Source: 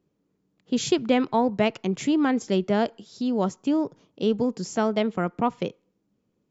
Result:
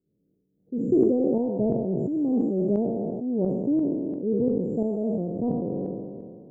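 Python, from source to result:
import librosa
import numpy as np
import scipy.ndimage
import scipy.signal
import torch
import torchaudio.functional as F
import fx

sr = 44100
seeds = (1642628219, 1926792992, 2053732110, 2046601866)

y = fx.spec_trails(x, sr, decay_s=2.27)
y = scipy.signal.sosfilt(scipy.signal.cheby2(4, 60, [1400.0, 5800.0], 'bandstop', fs=sr, output='sos'), y)
y = fx.tremolo_shape(y, sr, shape='saw_up', hz=2.9, depth_pct=70)
y = fx.sustainer(y, sr, db_per_s=33.0)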